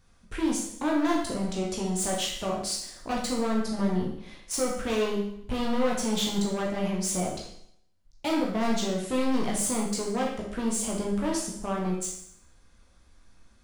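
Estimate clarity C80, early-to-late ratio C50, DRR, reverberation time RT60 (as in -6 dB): 7.0 dB, 3.0 dB, -2.5 dB, 0.70 s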